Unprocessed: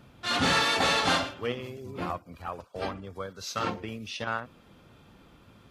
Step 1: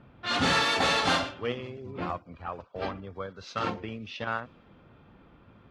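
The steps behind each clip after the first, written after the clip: level-controlled noise filter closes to 2.2 kHz, open at -21.5 dBFS; treble shelf 12 kHz -11.5 dB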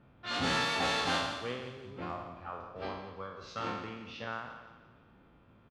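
spectral sustain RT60 0.87 s; feedback delay 173 ms, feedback 46%, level -12.5 dB; trim -8.5 dB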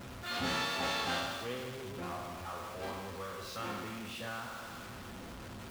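jump at every zero crossing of -36 dBFS; comb of notches 150 Hz; trim -4 dB

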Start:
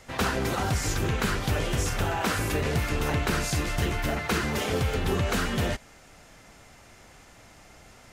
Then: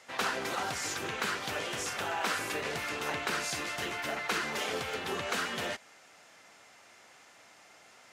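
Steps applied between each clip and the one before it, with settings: frequency weighting A; trim -3.5 dB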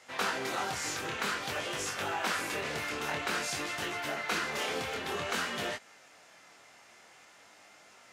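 chorus 0.52 Hz, delay 19.5 ms, depth 7.3 ms; trim +3 dB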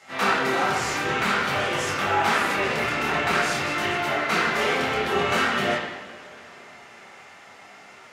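reverberation, pre-delay 3 ms, DRR -8 dB; trim +2.5 dB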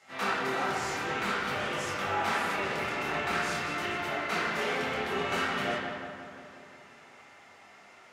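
filtered feedback delay 177 ms, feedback 65%, low-pass 2.4 kHz, level -6.5 dB; trim -8.5 dB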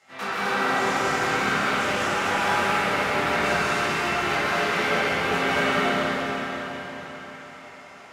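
plate-style reverb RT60 4.1 s, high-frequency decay 0.95×, pre-delay 115 ms, DRR -7 dB

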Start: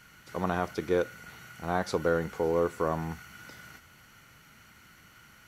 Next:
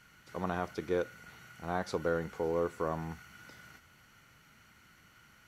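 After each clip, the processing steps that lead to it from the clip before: treble shelf 9.8 kHz -4.5 dB; trim -5 dB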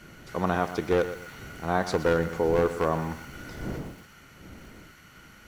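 one-sided wavefolder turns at -26.5 dBFS; wind noise 290 Hz -52 dBFS; bit-crushed delay 120 ms, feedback 35%, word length 9-bit, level -12 dB; trim +8.5 dB

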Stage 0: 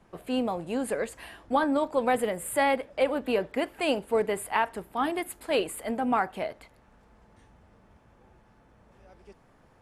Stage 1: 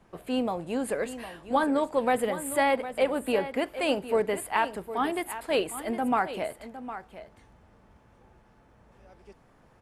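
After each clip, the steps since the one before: delay 759 ms -12.5 dB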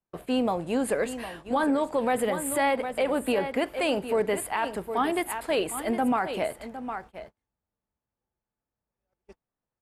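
gate -47 dBFS, range -35 dB; peak limiter -20 dBFS, peak gain reduction 9 dB; trim +3.5 dB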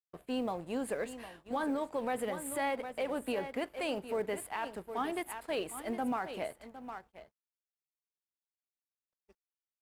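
companding laws mixed up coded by A; trim -8.5 dB

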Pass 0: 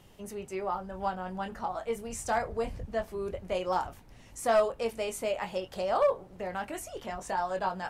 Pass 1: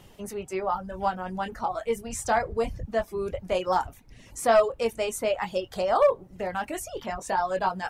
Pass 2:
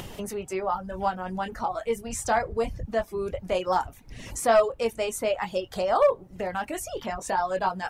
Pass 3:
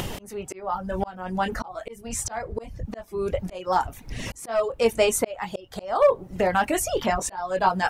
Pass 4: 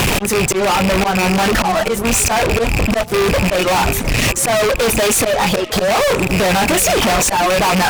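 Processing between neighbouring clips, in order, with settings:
reverb removal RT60 0.66 s; trim +5.5 dB
upward compressor, threshold -28 dBFS
slow attack 522 ms; trim +8.5 dB
rattle on loud lows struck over -42 dBFS, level -21 dBFS; fuzz box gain 44 dB, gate -50 dBFS; repeats whose band climbs or falls 358 ms, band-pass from 150 Hz, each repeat 1.4 oct, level -9 dB

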